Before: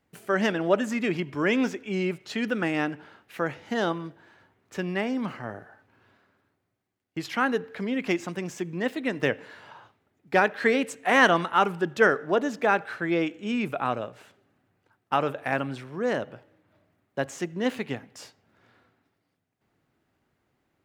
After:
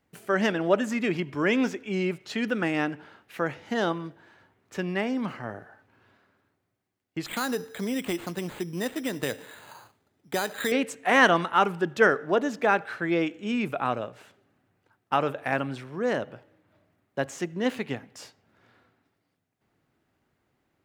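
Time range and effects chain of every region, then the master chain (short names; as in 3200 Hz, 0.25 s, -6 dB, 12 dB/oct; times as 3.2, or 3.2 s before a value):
7.26–10.72 careless resampling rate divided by 8×, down none, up hold + compressor 3:1, threshold -24 dBFS
whole clip: dry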